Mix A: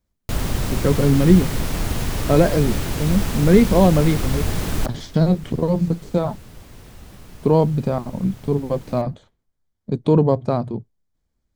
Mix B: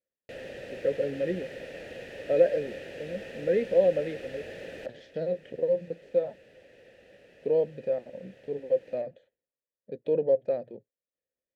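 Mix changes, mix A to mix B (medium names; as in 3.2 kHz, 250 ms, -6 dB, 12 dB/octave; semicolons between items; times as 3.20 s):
second sound +4.5 dB; master: add vowel filter e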